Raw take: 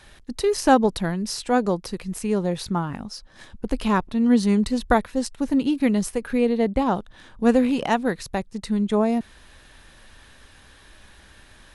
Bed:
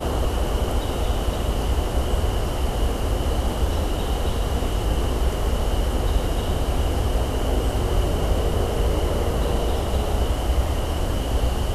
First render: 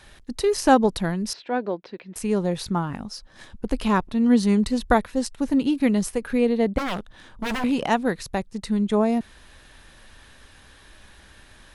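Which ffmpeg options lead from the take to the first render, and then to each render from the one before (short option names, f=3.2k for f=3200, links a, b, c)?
-filter_complex "[0:a]asettb=1/sr,asplit=3[a][b][c];[a]atrim=end=1.334[d];[b]atrim=start=1.33:end=2.16,asetpts=PTS-STARTPTS,afade=t=in:d=0.004:c=qsin,afade=t=out:st=0.826:d=0.004:c=qsin,highpass=340,equalizer=f=470:t=q:w=4:g=-4,equalizer=f=810:t=q:w=4:g=-5,equalizer=f=1.2k:t=q:w=4:g=-9,equalizer=f=2k:t=q:w=4:g=-3,equalizer=f=2.9k:t=q:w=4:g=-5,lowpass=f=3.3k:w=0.5412,lowpass=f=3.3k:w=1.3066[e];[c]atrim=start=2.156[f];[d][e]acrossfade=d=0.004:c1=hsin:c2=qsin[g];[g][f]acrossfade=d=0.004:c1=qsin:c2=hsin,asettb=1/sr,asplit=3[h][i][j];[h]atrim=end=6.784[k];[i]atrim=start=6.78:end=7.64,asetpts=PTS-STARTPTS,afade=t=in:d=0.004:c=qsin,afade=t=out:st=0.856:d=0.004:c=qsin,aeval=exprs='0.0794*(abs(mod(val(0)/0.0794+3,4)-2)-1)':c=same[l];[j]atrim=start=7.636[m];[k][l]acrossfade=d=0.004:c1=hsin:c2=qsin[n];[n][m]acrossfade=d=0.004:c1=qsin:c2=hsin"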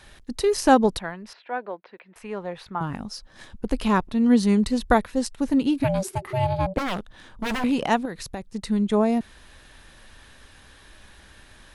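-filter_complex "[0:a]asettb=1/sr,asplit=3[a][b][c];[a]atrim=end=0.994[d];[b]atrim=start=0.99:end=2.81,asetpts=PTS-STARTPTS,afade=t=in:d=0.004:c=qsin,afade=t=out:st=1.816:d=0.004:c=qsin,acrossover=split=580 2900:gain=0.2 1 0.112[e][f][g];[e][f][g]amix=inputs=3:normalize=0[h];[c]atrim=start=2.806[i];[d][h]acrossfade=d=0.004:c1=hsin:c2=qsin[j];[j][i]acrossfade=d=0.004:c1=qsin:c2=hsin,asplit=3[k][l][m];[k]afade=t=out:st=5.83:d=0.02[n];[l]aeval=exprs='val(0)*sin(2*PI*380*n/s)':c=same,afade=t=in:st=5.83:d=0.02,afade=t=out:st=6.76:d=0.02[o];[m]afade=t=in:st=6.76:d=0.02[p];[n][o][p]amix=inputs=3:normalize=0,asettb=1/sr,asplit=3[q][r][s];[q]atrim=end=8.054[t];[r]atrim=start=8.05:end=8.51,asetpts=PTS-STARTPTS,afade=t=in:d=0.004:c=qsin,afade=t=out:st=0.456:d=0.004:c=qsin,acompressor=threshold=-27dB:ratio=6:attack=3.2:release=140:knee=1:detection=peak[u];[s]atrim=start=8.506[v];[t][u]acrossfade=d=0.004:c1=hsin:c2=qsin[w];[w][v]acrossfade=d=0.004:c1=qsin:c2=hsin"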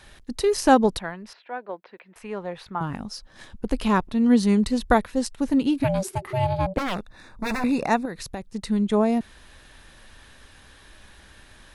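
-filter_complex "[0:a]asettb=1/sr,asplit=3[a][b][c];[a]atrim=end=6.954[d];[b]atrim=start=6.95:end=8.17,asetpts=PTS-STARTPTS,afade=t=in:d=0.004:c=qsin,afade=t=out:st=1.216:d=0.004:c=qsin,asuperstop=centerf=3100:order=20:qfactor=4.6[e];[c]atrim=start=8.166[f];[d][e]acrossfade=d=0.004:c1=hsin:c2=qsin[g];[g][f]acrossfade=d=0.004:c1=qsin:c2=hsin,asplit=2[h][i];[h]atrim=end=1.69,asetpts=PTS-STARTPTS,afade=t=out:st=1.22:d=0.47:silence=0.501187[j];[i]atrim=start=1.69,asetpts=PTS-STARTPTS,afade=t=in:d=0.004:c=hsin:silence=0.501187[k];[j][k]concat=n=2:v=0:a=1"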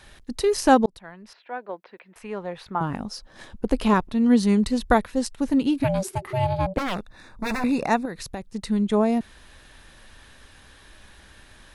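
-filter_complex "[0:a]asettb=1/sr,asplit=3[a][b][c];[a]atrim=end=2.684[d];[b]atrim=start=2.68:end=3.94,asetpts=PTS-STARTPTS,afade=t=in:d=0.004:c=qsin,afade=t=out:st=1.256:d=0.004:c=qsin,equalizer=f=510:w=0.56:g=4.5[e];[c]atrim=start=3.936[f];[d][e]acrossfade=d=0.004:c1=hsin:c2=qsin[g];[g][f]acrossfade=d=0.004:c1=qsin:c2=hsin,asplit=2[h][i];[h]atrim=end=0.86,asetpts=PTS-STARTPTS,afade=t=out:st=0.856:d=0.004:c=hsin[j];[i]atrim=start=0.86,asetpts=PTS-STARTPTS,afade=t=in:d=0.66[k];[j][k]concat=n=2:v=0:a=1"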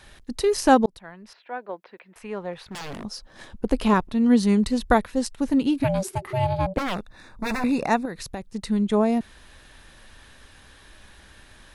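-filter_complex "[0:a]asettb=1/sr,asplit=3[a][b][c];[a]atrim=end=2.534[d];[b]atrim=start=2.53:end=3.05,asetpts=PTS-STARTPTS,afade=t=in:d=0.004:c=qsin,afade=t=out:st=0.516:d=0.004:c=qsin,aeval=exprs='0.0316*(abs(mod(val(0)/0.0316+3,4)-2)-1)':c=same[e];[c]atrim=start=3.046[f];[d][e]acrossfade=d=0.004:c1=hsin:c2=qsin[g];[g][f]acrossfade=d=0.004:c1=qsin:c2=hsin"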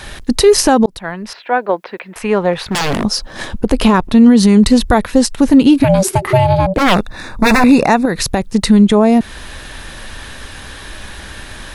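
-filter_complex "[0:a]asplit=2[a][b];[b]acompressor=threshold=-27dB:ratio=6,volume=2.5dB[c];[a][c]amix=inputs=2:normalize=0,alimiter=level_in=11.5dB:limit=-1dB:release=50:level=0:latency=1"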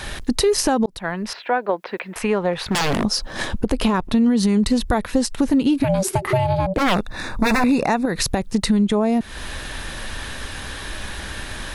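-af "acompressor=threshold=-19dB:ratio=2.5"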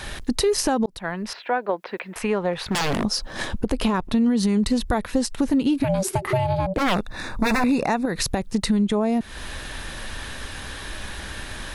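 -af "volume=-3dB"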